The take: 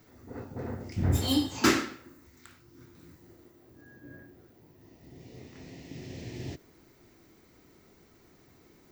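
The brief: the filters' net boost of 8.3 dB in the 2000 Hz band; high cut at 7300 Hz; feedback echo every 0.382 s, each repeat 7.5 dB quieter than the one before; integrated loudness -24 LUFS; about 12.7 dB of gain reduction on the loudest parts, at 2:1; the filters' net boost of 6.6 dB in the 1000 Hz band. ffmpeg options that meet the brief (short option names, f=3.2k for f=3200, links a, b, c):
-af "lowpass=7.3k,equalizer=f=1k:t=o:g=5.5,equalizer=f=2k:t=o:g=8.5,acompressor=threshold=-38dB:ratio=2,aecho=1:1:382|764|1146|1528|1910:0.422|0.177|0.0744|0.0312|0.0131,volume=15.5dB"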